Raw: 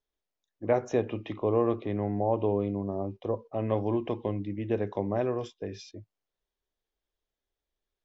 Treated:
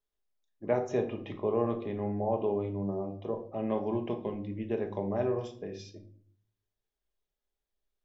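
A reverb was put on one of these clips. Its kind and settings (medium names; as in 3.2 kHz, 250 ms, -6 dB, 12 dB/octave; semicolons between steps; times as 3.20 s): simulated room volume 560 m³, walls furnished, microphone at 1.3 m; trim -4.5 dB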